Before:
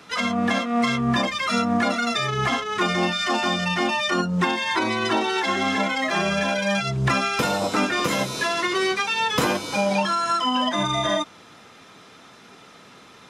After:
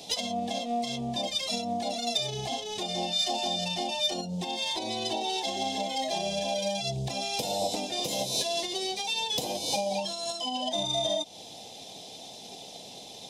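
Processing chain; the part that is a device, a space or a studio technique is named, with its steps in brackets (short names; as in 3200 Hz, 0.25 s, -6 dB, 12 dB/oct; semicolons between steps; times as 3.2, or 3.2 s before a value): drum-bus smash (transient shaper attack +7 dB, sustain 0 dB; compressor 12:1, threshold -28 dBFS, peak gain reduction 16.5 dB; soft clip -23.5 dBFS, distortion -20 dB); EQ curve 370 Hz 0 dB, 770 Hz +10 dB, 1300 Hz -25 dB, 3500 Hz +10 dB; gain -1.5 dB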